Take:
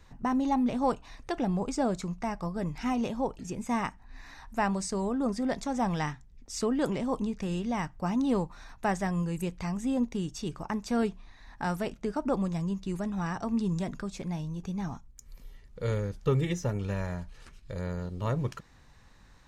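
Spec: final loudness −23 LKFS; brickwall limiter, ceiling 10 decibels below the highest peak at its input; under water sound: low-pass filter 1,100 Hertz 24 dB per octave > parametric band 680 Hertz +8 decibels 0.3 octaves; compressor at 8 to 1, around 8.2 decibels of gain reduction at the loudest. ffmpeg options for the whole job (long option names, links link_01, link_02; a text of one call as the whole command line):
ffmpeg -i in.wav -af "acompressor=threshold=-30dB:ratio=8,alimiter=level_in=5.5dB:limit=-24dB:level=0:latency=1,volume=-5.5dB,lowpass=frequency=1100:width=0.5412,lowpass=frequency=1100:width=1.3066,equalizer=frequency=680:width_type=o:width=0.3:gain=8,volume=15.5dB" out.wav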